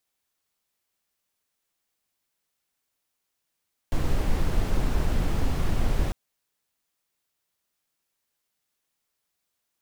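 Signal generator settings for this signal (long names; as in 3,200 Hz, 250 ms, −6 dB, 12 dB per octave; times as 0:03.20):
noise brown, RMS −22 dBFS 2.20 s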